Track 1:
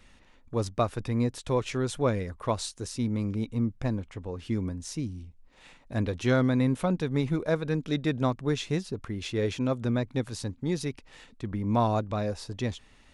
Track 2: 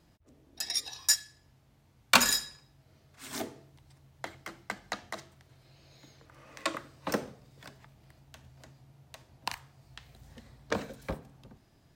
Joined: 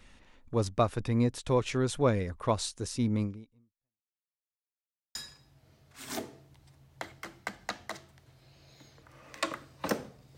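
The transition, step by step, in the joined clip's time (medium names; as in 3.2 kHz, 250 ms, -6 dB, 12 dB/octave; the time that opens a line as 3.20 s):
track 1
3.23–4.21 s: fade out exponential
4.21–5.15 s: mute
5.15 s: go over to track 2 from 2.38 s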